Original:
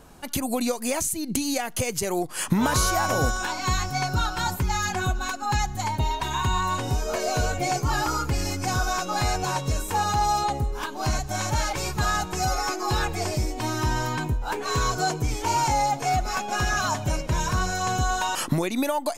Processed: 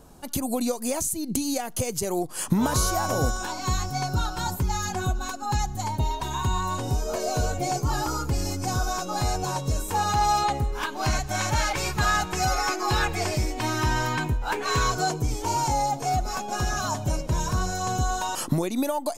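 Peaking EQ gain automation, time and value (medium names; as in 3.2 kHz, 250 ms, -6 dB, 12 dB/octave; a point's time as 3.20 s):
peaking EQ 2.1 kHz 1.6 oct
9.72 s -8 dB
10.28 s +4 dB
14.80 s +4 dB
15.28 s -8 dB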